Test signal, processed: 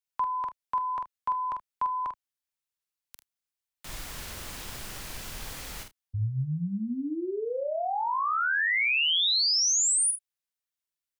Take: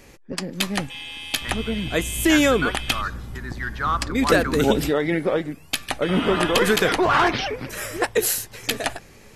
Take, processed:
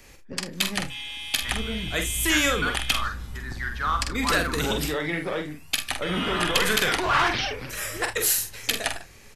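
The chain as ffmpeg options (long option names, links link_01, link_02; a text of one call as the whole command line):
ffmpeg -i in.wav -filter_complex "[0:a]equalizer=frequency=320:width=0.34:gain=-7.5,acrossover=split=170|940|2500[link_01][link_02][link_03][link_04];[link_02]volume=27.5dB,asoftclip=hard,volume=-27.5dB[link_05];[link_01][link_05][link_03][link_04]amix=inputs=4:normalize=0,aecho=1:1:46|77:0.501|0.126" out.wav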